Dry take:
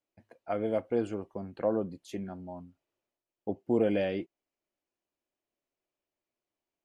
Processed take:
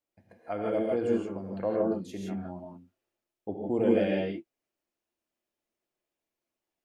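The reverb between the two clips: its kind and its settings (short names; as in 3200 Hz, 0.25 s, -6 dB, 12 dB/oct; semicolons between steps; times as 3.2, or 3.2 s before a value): non-linear reverb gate 0.19 s rising, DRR -2 dB; gain -2 dB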